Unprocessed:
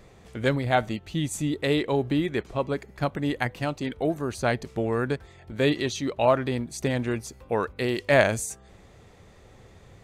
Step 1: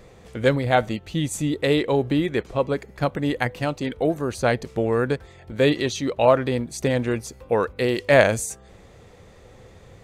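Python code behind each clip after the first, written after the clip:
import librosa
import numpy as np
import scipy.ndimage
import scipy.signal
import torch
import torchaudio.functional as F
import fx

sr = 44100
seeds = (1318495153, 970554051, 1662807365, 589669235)

y = fx.peak_eq(x, sr, hz=500.0, db=6.5, octaves=0.21)
y = y * 10.0 ** (3.0 / 20.0)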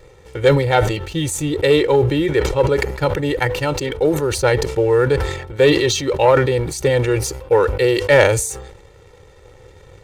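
y = x + 0.9 * np.pad(x, (int(2.2 * sr / 1000.0), 0))[:len(x)]
y = fx.leveller(y, sr, passes=1)
y = fx.sustainer(y, sr, db_per_s=62.0)
y = y * 10.0 ** (-1.0 / 20.0)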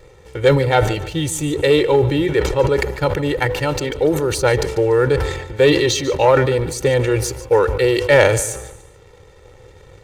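y = fx.echo_feedback(x, sr, ms=145, feedback_pct=35, wet_db=-15.5)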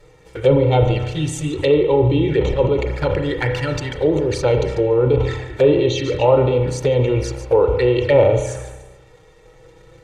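y = fx.env_flanger(x, sr, rest_ms=7.3, full_db=-13.5)
y = fx.env_lowpass_down(y, sr, base_hz=1500.0, full_db=-10.0)
y = fx.rev_spring(y, sr, rt60_s=1.1, pass_ms=(32,), chirp_ms=60, drr_db=5.5)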